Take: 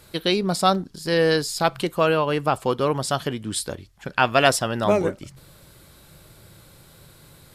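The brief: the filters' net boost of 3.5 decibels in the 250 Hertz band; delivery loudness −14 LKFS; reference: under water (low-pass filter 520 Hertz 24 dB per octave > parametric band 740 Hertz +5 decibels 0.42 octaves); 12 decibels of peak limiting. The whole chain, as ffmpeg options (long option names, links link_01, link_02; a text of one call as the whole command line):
ffmpeg -i in.wav -af "equalizer=frequency=250:width_type=o:gain=5,alimiter=limit=-13.5dB:level=0:latency=1,lowpass=frequency=520:width=0.5412,lowpass=frequency=520:width=1.3066,equalizer=frequency=740:width_type=o:width=0.42:gain=5,volume=13.5dB" out.wav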